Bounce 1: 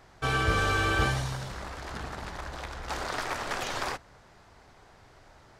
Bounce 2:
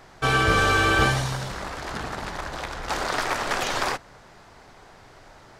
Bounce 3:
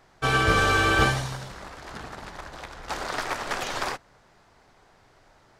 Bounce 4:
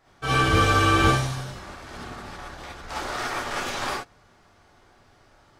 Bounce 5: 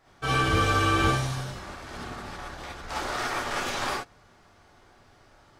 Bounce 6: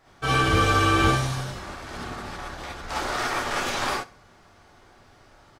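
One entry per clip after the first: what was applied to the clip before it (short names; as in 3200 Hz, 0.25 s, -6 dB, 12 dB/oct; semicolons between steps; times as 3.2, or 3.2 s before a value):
bell 68 Hz -7 dB 1.1 oct; gain +7 dB
upward expander 1.5:1, over -35 dBFS
non-linear reverb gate 90 ms rising, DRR -6.5 dB; gain -6.5 dB
compressor 1.5:1, threshold -26 dBFS, peak gain reduction 4.5 dB
feedback echo 64 ms, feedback 34%, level -21 dB; gain +3 dB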